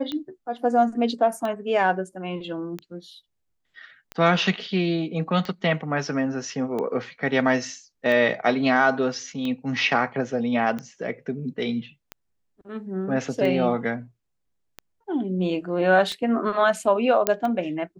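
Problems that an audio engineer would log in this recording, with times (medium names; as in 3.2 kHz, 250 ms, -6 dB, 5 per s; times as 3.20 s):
tick 45 rpm -18 dBFS
17.27 s: pop -3 dBFS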